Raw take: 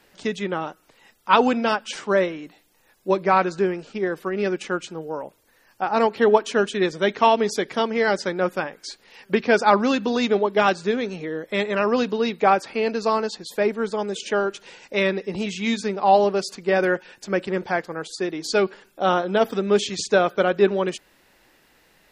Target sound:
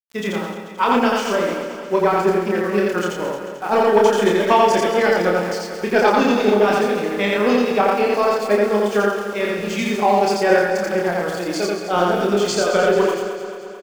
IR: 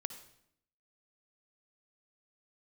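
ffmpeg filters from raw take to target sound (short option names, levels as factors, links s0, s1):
-filter_complex "[0:a]bandreject=f=3900:w=10,acontrast=35,tremolo=f=2.5:d=0.57,aeval=exprs='val(0)*gte(abs(val(0)),0.0188)':c=same,atempo=1.6,asplit=2[s0][s1];[s1]adelay=29,volume=0.708[s2];[s0][s2]amix=inputs=2:normalize=0,aecho=1:1:220|440|660|880|1100|1320|1540:0.299|0.176|0.104|0.0613|0.0362|0.0213|0.0126,asplit=2[s3][s4];[1:a]atrim=start_sample=2205,adelay=85[s5];[s4][s5]afir=irnorm=-1:irlink=0,volume=1.06[s6];[s3][s6]amix=inputs=2:normalize=0,volume=0.75"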